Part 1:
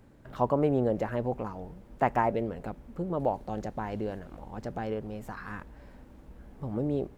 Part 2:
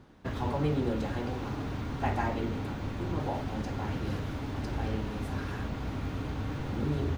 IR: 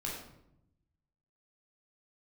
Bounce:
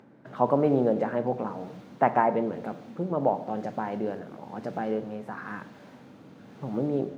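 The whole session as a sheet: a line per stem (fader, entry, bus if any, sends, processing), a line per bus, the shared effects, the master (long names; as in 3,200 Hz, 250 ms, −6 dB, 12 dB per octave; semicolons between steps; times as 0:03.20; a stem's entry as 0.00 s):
+2.0 dB, 0.00 s, send −11 dB, low-pass filter 1,800 Hz 12 dB per octave
−13.0 dB, 0.00 s, no send, rotating-speaker cabinet horn 1 Hz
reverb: on, RT60 0.80 s, pre-delay 14 ms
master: high-pass filter 150 Hz 24 dB per octave; high-shelf EQ 3,500 Hz +7 dB; upward compression, threshold −54 dBFS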